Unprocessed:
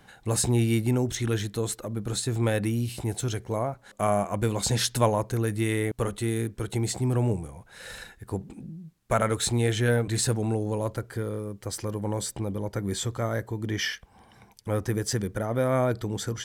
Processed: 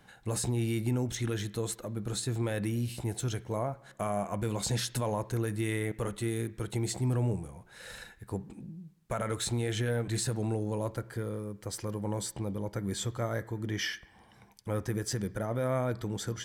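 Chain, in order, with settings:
brickwall limiter −18 dBFS, peak gain reduction 9 dB
on a send: convolution reverb RT60 1.1 s, pre-delay 3 ms, DRR 12.5 dB
on the sum: level −4.5 dB

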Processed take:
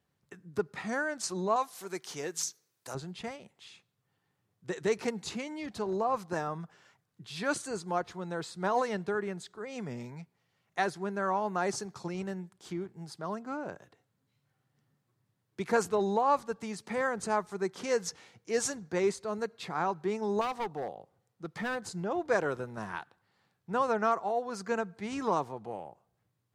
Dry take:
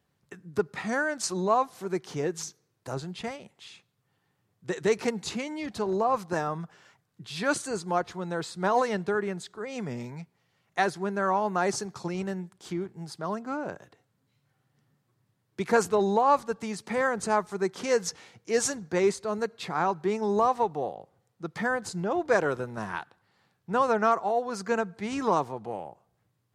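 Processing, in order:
0:01.56–0:02.95: spectral tilt +3 dB per octave
0:20.41–0:21.91: gain into a clipping stage and back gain 25.5 dB
level −4.5 dB

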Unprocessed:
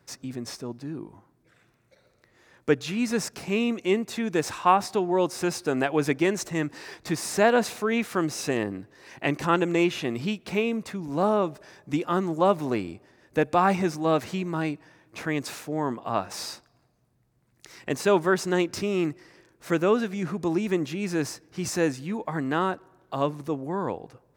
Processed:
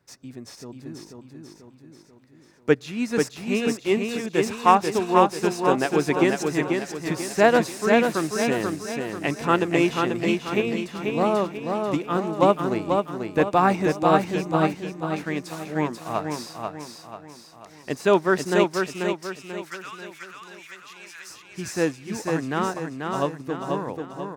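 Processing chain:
0:18.64–0:21.30: high-pass filter 1,200 Hz 24 dB per octave
repeating echo 489 ms, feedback 54%, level −3 dB
expander for the loud parts 1.5 to 1, over −35 dBFS
level +4 dB

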